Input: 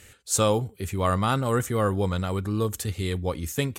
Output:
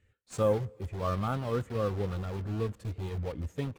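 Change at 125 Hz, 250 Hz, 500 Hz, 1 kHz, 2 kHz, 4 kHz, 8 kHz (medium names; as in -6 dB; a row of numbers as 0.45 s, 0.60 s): -6.0 dB, -8.0 dB, -5.0 dB, -9.0 dB, -11.5 dB, -14.5 dB, -21.5 dB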